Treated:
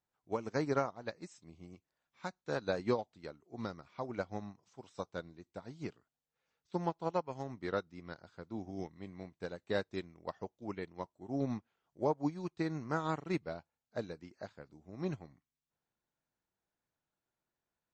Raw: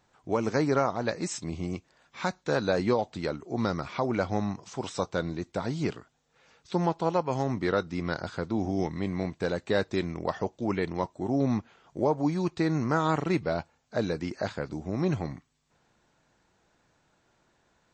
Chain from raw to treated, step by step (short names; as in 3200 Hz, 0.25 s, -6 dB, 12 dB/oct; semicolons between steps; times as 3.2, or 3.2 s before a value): upward expander 2.5:1, over -34 dBFS; gain -5 dB